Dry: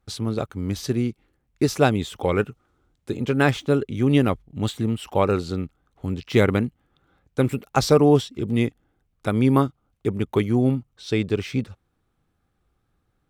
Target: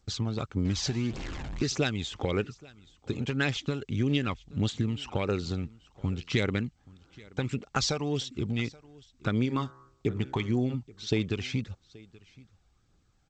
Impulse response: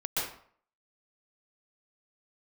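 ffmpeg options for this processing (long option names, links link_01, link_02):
-filter_complex "[0:a]asettb=1/sr,asplit=3[link_01][link_02][link_03];[link_01]atrim=end=0.654[link_04];[link_02]atrim=start=0.65:end=1.68,asetpts=PTS-STARTPTS,afade=type=in:duration=0.004:curve=qsin,afade=type=out:start_time=1.026:duration=0.004:curve=qsin,aeval=exprs='val(0)+0.5*0.0266*sgn(val(0))':channel_layout=same[link_05];[link_03]atrim=start=1.676[link_06];[link_04][link_05]acrossfade=duration=0.004:curve1=hsin:curve2=qsin[link_07];[link_07][link_06]acrossfade=duration=0.004:curve1=qsin:curve2=hsin,asplit=3[link_08][link_09][link_10];[link_08]afade=type=out:start_time=9.44:duration=0.02[link_11];[link_09]bandreject=frequency=65.67:width_type=h:width=4,bandreject=frequency=131.34:width_type=h:width=4,bandreject=frequency=197.01:width_type=h:width=4,bandreject=frequency=262.68:width_type=h:width=4,bandreject=frequency=328.35:width_type=h:width=4,bandreject=frequency=394.02:width_type=h:width=4,bandreject=frequency=459.69:width_type=h:width=4,bandreject=frequency=525.36:width_type=h:width=4,bandreject=frequency=591.03:width_type=h:width=4,bandreject=frequency=656.7:width_type=h:width=4,bandreject=frequency=722.37:width_type=h:width=4,bandreject=frequency=788.04:width_type=h:width=4,bandreject=frequency=853.71:width_type=h:width=4,bandreject=frequency=919.38:width_type=h:width=4,bandreject=frequency=985.05:width_type=h:width=4,bandreject=frequency=1050.72:width_type=h:width=4,bandreject=frequency=1116.39:width_type=h:width=4,bandreject=frequency=1182.06:width_type=h:width=4,bandreject=frequency=1247.73:width_type=h:width=4,bandreject=frequency=1313.4:width_type=h:width=4,bandreject=frequency=1379.07:width_type=h:width=4,bandreject=frequency=1444.74:width_type=h:width=4,bandreject=frequency=1510.41:width_type=h:width=4,bandreject=frequency=1576.08:width_type=h:width=4,bandreject=frequency=1641.75:width_type=h:width=4,bandreject=frequency=1707.42:width_type=h:width=4,bandreject=frequency=1773.09:width_type=h:width=4,bandreject=frequency=1838.76:width_type=h:width=4,bandreject=frequency=1904.43:width_type=h:width=4,bandreject=frequency=1970.1:width_type=h:width=4,afade=type=in:start_time=9.44:duration=0.02,afade=type=out:start_time=10.73:duration=0.02[link_12];[link_10]afade=type=in:start_time=10.73:duration=0.02[link_13];[link_11][link_12][link_13]amix=inputs=3:normalize=0,acrossover=split=2000[link_14][link_15];[link_14]acompressor=threshold=-25dB:ratio=20[link_16];[link_16][link_15]amix=inputs=2:normalize=0,flanger=delay=0.1:depth=1.3:regen=34:speed=1.7:shape=triangular,aecho=1:1:828:0.0708,volume=3dB" -ar 16000 -c:a g722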